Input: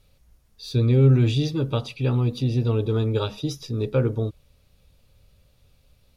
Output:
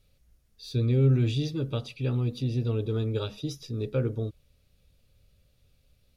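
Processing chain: bell 940 Hz -7 dB 0.7 oct; gain -5.5 dB

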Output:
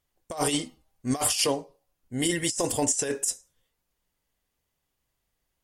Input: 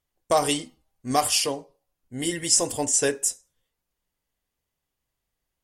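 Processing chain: negative-ratio compressor -25 dBFS, ratio -0.5

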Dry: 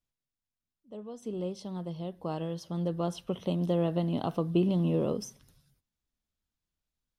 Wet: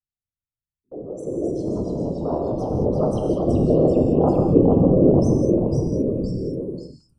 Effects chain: formant sharpening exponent 2; gate with hold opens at -52 dBFS; band shelf 3500 Hz -14 dB; echoes that change speed 0.191 s, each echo -1 st, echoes 3; whisperiser; non-linear reverb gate 0.24 s flat, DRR 1.5 dB; gain +8 dB

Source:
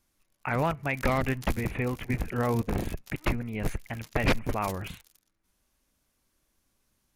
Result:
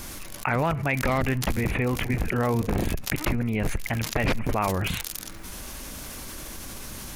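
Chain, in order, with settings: fast leveller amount 70%; gain -1.5 dB

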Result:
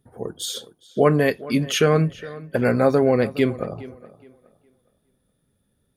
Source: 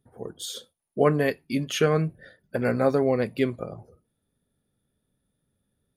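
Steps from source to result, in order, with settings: in parallel at 0 dB: limiter -15.5 dBFS, peak gain reduction 7.5 dB; on the sum: tape echo 0.416 s, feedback 29%, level -17 dB, low-pass 3300 Hz

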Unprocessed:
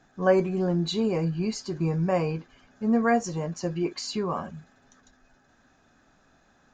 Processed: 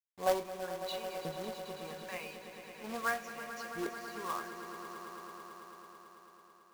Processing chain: LFO band-pass saw up 0.8 Hz 480–4400 Hz; companded quantiser 4-bit; swelling echo 0.11 s, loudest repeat 5, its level -13 dB; gain -2.5 dB

